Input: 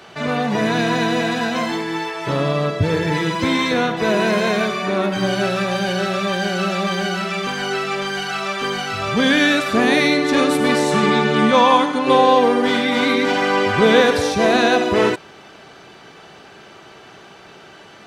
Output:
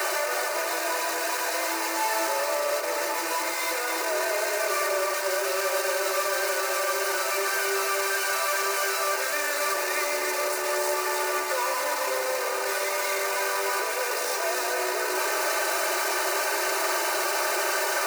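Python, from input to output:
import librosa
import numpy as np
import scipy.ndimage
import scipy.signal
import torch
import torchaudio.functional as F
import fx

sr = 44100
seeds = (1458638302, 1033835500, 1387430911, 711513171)

y = np.sign(x) * np.sqrt(np.mean(np.square(x)))
y = scipy.signal.sosfilt(scipy.signal.butter(12, 370.0, 'highpass', fs=sr, output='sos'), y)
y = fx.peak_eq(y, sr, hz=3300.0, db=-14.5, octaves=0.37)
y = y + 0.8 * np.pad(y, (int(3.3 * sr / 1000.0), 0))[:len(y)]
y = y + 10.0 ** (-5.5 / 20.0) * np.pad(y, (int(305 * sr / 1000.0), 0))[:len(y)]
y = y * librosa.db_to_amplitude(-9.0)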